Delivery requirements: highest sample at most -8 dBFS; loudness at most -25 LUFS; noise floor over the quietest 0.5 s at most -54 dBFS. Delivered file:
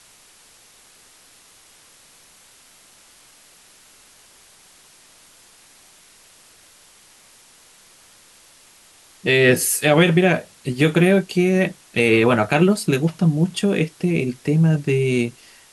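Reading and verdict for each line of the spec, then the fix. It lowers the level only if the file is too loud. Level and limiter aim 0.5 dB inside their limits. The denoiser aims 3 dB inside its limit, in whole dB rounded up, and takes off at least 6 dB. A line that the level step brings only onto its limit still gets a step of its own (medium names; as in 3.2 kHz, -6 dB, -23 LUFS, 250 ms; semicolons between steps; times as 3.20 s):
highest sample -4.0 dBFS: fail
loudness -18.0 LUFS: fail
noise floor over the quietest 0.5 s -51 dBFS: fail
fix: trim -7.5 dB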